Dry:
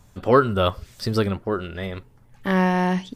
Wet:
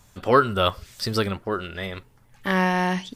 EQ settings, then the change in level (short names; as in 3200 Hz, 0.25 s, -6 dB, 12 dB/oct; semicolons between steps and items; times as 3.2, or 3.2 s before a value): tilt shelf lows -4 dB, about 910 Hz; 0.0 dB